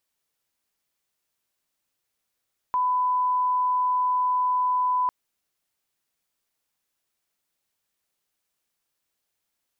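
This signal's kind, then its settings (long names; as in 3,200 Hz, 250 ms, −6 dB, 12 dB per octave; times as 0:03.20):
line-up tone −20 dBFS 2.35 s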